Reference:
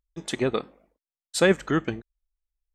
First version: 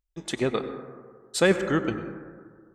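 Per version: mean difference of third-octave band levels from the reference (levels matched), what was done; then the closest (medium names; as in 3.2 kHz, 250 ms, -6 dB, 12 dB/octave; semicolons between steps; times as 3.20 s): 3.5 dB: plate-style reverb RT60 1.8 s, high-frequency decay 0.25×, pre-delay 80 ms, DRR 9 dB; trim -1 dB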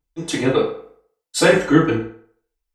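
5.5 dB: FDN reverb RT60 0.57 s, low-frequency decay 0.75×, high-frequency decay 0.7×, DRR -9.5 dB; trim -1.5 dB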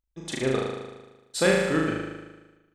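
8.0 dB: flutter echo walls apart 6.5 m, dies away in 1.2 s; trim -4 dB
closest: first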